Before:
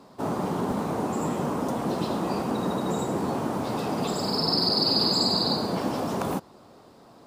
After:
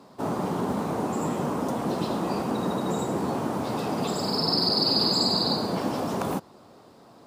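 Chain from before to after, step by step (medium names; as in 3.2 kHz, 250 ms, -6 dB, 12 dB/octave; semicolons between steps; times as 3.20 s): high-pass 59 Hz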